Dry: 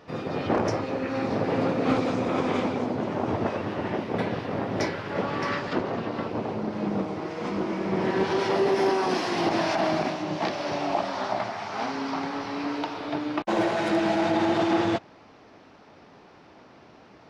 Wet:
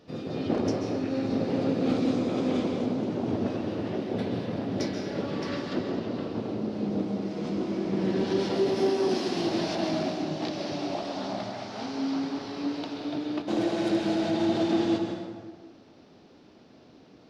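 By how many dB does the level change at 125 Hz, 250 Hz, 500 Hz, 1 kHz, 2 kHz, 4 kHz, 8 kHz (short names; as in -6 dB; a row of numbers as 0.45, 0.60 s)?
-1.0 dB, +0.5 dB, -2.5 dB, -8.5 dB, -8.5 dB, -1.5 dB, n/a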